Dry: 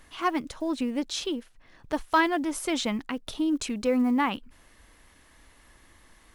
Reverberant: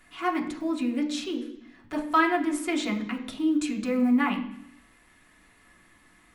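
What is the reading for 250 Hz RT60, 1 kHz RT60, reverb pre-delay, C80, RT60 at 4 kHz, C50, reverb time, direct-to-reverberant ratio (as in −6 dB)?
0.90 s, 0.70 s, 3 ms, 12.5 dB, 1.0 s, 10.0 dB, 0.70 s, −0.5 dB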